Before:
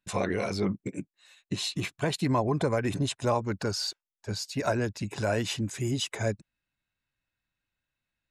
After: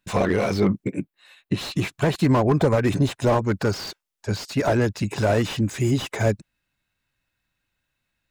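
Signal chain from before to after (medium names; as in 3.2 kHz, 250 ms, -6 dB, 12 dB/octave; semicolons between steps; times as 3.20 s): 0.84–1.61 s: peaking EQ 6.6 kHz -13 dB 0.96 oct; slew-rate limiter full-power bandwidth 39 Hz; trim +8.5 dB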